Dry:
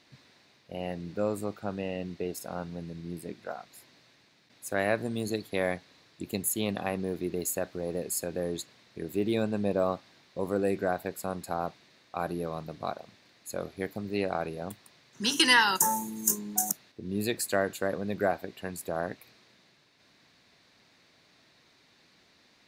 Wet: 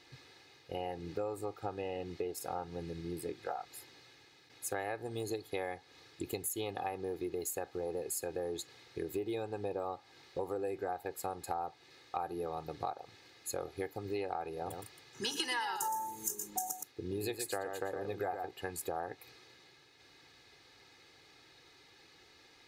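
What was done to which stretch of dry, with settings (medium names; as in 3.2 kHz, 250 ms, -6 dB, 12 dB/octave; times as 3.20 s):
14.54–18.51 s: delay 117 ms -7.5 dB
whole clip: dynamic bell 780 Hz, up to +8 dB, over -45 dBFS, Q 1.7; comb 2.4 ms, depth 76%; compression 6:1, threshold -35 dBFS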